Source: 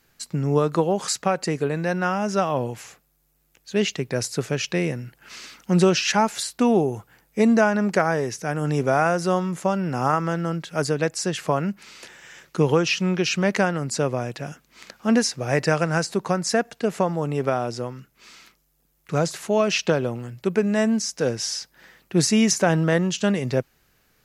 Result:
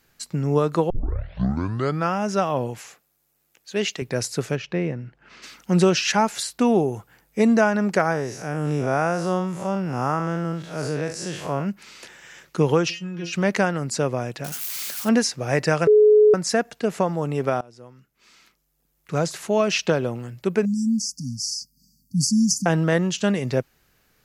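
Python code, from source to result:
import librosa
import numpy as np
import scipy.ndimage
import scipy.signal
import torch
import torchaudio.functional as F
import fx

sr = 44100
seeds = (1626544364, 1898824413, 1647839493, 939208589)

y = fx.highpass(x, sr, hz=310.0, slope=6, at=(2.8, 4.02))
y = fx.spacing_loss(y, sr, db_at_10k=26, at=(4.55, 5.42), fade=0.02)
y = fx.spec_blur(y, sr, span_ms=117.0, at=(8.12, 11.65), fade=0.02)
y = fx.stiff_resonator(y, sr, f0_hz=170.0, decay_s=0.22, stiffness=0.002, at=(12.89, 13.32), fade=0.02)
y = fx.crossing_spikes(y, sr, level_db=-22.5, at=(14.44, 15.09))
y = fx.brickwall_bandstop(y, sr, low_hz=280.0, high_hz=4400.0, at=(20.65, 22.66))
y = fx.edit(y, sr, fx.tape_start(start_s=0.9, length_s=1.23),
    fx.bleep(start_s=15.87, length_s=0.47, hz=424.0, db=-10.0),
    fx.fade_in_from(start_s=17.61, length_s=1.79, floor_db=-23.0), tone=tone)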